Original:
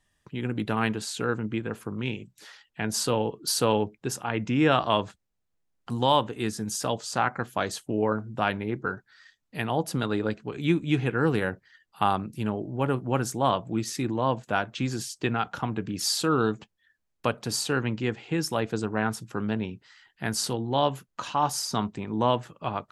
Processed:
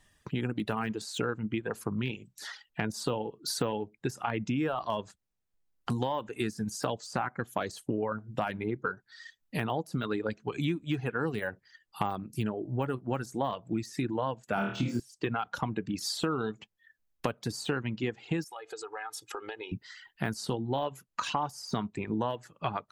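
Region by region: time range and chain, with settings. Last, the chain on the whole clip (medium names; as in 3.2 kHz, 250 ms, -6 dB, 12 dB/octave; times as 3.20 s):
14.55–15.00 s: peaking EQ 200 Hz +7.5 dB 1.8 oct + doubling 25 ms -13 dB + flutter echo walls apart 4.3 m, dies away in 0.8 s
18.44–19.72 s: high-pass 520 Hz + comb 2.4 ms, depth 84% + compression 8:1, threshold -41 dBFS
whole clip: de-esser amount 100%; reverb removal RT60 1.7 s; compression 6:1, threshold -36 dBFS; trim +7.5 dB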